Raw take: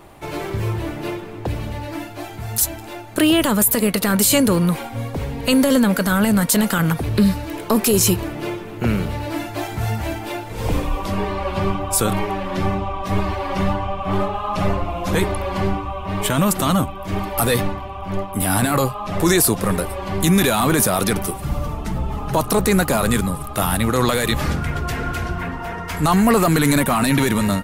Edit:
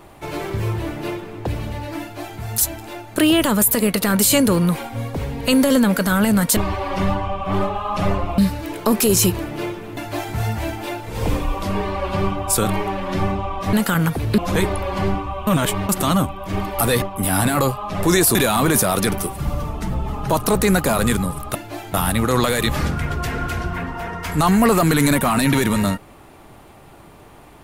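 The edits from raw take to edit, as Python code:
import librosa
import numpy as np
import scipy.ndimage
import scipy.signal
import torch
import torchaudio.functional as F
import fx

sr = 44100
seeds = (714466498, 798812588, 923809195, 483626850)

y = fx.edit(x, sr, fx.duplicate(start_s=2.01, length_s=0.39, to_s=23.59),
    fx.swap(start_s=6.57, length_s=0.65, other_s=13.16, other_length_s=1.81),
    fx.cut(start_s=8.81, length_s=0.59),
    fx.reverse_span(start_s=16.06, length_s=0.42),
    fx.cut(start_s=17.61, length_s=0.58),
    fx.cut(start_s=19.52, length_s=0.87), tone=tone)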